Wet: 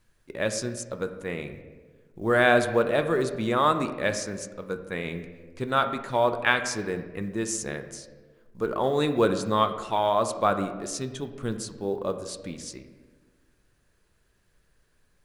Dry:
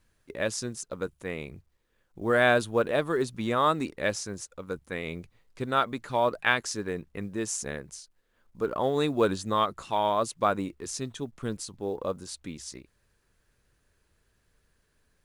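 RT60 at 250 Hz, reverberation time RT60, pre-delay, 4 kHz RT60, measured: 1.8 s, 1.4 s, 5 ms, 0.85 s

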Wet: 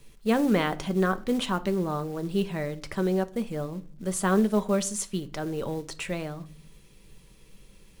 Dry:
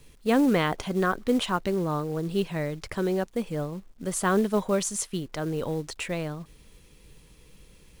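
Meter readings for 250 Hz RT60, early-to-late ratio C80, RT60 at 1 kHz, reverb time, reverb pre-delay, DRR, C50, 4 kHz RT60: 0.80 s, 25.0 dB, 0.35 s, 0.45 s, 5 ms, 10.0 dB, 20.0 dB, 0.35 s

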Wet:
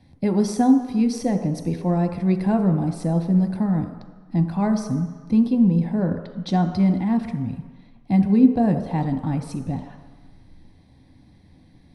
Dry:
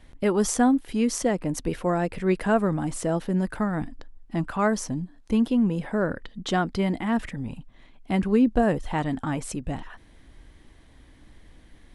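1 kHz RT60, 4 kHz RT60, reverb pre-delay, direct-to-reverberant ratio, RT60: 1.4 s, 1.4 s, 3 ms, 5.0 dB, 1.4 s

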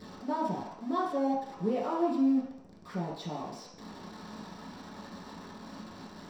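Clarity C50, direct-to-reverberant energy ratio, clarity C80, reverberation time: 2.5 dB, -6.5 dB, 6.0 dB, 0.75 s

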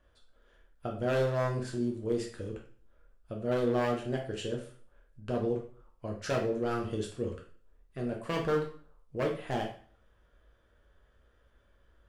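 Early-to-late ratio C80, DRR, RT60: 12.0 dB, 0.0 dB, 0.45 s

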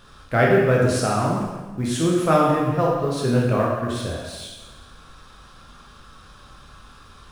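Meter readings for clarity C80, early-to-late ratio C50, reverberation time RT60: 3.0 dB, 1.0 dB, 1.3 s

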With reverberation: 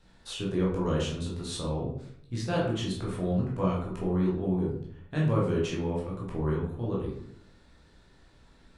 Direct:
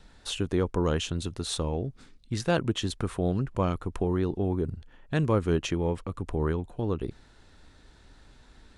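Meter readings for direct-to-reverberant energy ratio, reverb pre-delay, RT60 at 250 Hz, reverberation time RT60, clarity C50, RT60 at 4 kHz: -5.5 dB, 12 ms, 0.80 s, 0.70 s, 3.0 dB, 0.40 s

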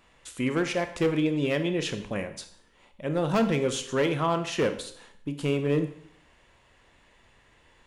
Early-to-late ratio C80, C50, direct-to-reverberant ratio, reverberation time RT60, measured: 14.0 dB, 11.5 dB, 8.0 dB, 0.65 s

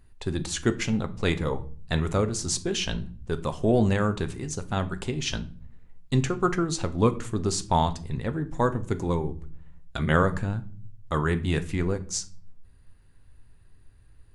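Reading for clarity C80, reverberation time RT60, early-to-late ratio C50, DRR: 21.5 dB, 0.45 s, 16.5 dB, 9.0 dB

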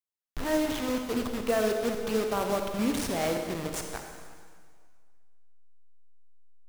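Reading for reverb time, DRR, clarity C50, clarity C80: 1.9 s, 3.5 dB, 4.5 dB, 5.5 dB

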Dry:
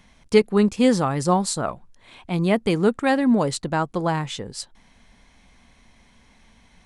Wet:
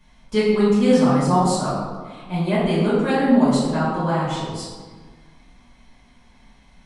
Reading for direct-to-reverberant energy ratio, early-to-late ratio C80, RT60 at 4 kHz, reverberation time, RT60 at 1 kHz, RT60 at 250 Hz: -11.5 dB, 2.0 dB, 0.90 s, 1.5 s, 1.5 s, 1.9 s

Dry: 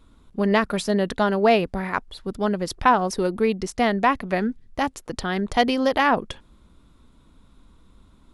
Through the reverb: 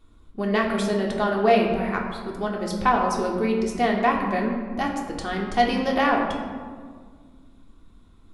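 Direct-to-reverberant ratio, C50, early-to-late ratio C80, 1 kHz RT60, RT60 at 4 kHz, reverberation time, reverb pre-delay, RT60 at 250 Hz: -1.0 dB, 4.0 dB, 5.5 dB, 1.6 s, 0.90 s, 1.8 s, 3 ms, 2.5 s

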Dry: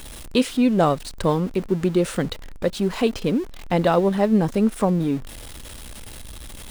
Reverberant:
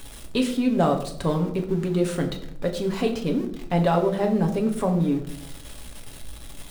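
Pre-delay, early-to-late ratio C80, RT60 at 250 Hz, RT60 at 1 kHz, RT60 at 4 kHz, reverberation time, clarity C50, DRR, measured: 7 ms, 13.0 dB, 0.95 s, 0.60 s, 0.45 s, 0.70 s, 11.0 dB, 3.0 dB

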